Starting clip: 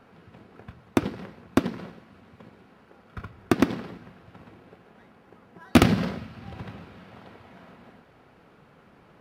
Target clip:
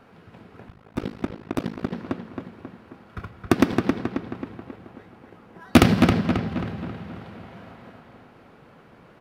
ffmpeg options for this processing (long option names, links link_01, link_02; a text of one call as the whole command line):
ffmpeg -i in.wav -filter_complex "[0:a]asplit=2[link_01][link_02];[link_02]adelay=269,lowpass=frequency=3600:poles=1,volume=-4dB,asplit=2[link_03][link_04];[link_04]adelay=269,lowpass=frequency=3600:poles=1,volume=0.51,asplit=2[link_05][link_06];[link_06]adelay=269,lowpass=frequency=3600:poles=1,volume=0.51,asplit=2[link_07][link_08];[link_08]adelay=269,lowpass=frequency=3600:poles=1,volume=0.51,asplit=2[link_09][link_10];[link_10]adelay=269,lowpass=frequency=3600:poles=1,volume=0.51,asplit=2[link_11][link_12];[link_12]adelay=269,lowpass=frequency=3600:poles=1,volume=0.51,asplit=2[link_13][link_14];[link_14]adelay=269,lowpass=frequency=3600:poles=1,volume=0.51[link_15];[link_03][link_05][link_07][link_09][link_11][link_13][link_15]amix=inputs=7:normalize=0[link_16];[link_01][link_16]amix=inputs=2:normalize=0,asettb=1/sr,asplit=3[link_17][link_18][link_19];[link_17]atrim=end=0.684[link_20];[link_18]atrim=start=0.68:end=1.92,asetpts=PTS-STARTPTS,afade=type=in:duration=0.004:curve=qsin,afade=type=out:start_time=1.236:duration=0.004:curve=qsin,tremolo=f=53:d=0.974[link_21];[link_19]atrim=start=1.916[link_22];[link_20][link_21]acrossfade=duration=0.004:curve1=hsin:curve2=qsin[link_23];[link_23][link_22]acrossfade=duration=0.004:curve1=qsin:curve2=hsin,volume=2.5dB" out.wav